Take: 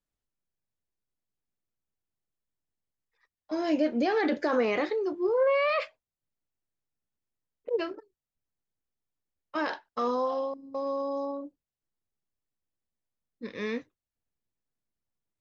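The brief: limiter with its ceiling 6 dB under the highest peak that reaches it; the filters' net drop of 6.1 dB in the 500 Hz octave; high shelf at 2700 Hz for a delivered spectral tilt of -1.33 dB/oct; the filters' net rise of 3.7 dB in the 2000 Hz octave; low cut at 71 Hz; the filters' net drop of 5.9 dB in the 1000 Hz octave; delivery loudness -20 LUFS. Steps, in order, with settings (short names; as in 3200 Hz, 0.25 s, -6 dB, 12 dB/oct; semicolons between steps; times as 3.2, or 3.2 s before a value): HPF 71 Hz; bell 500 Hz -5.5 dB; bell 1000 Hz -8 dB; bell 2000 Hz +5 dB; high shelf 2700 Hz +4 dB; gain +14 dB; limiter -9 dBFS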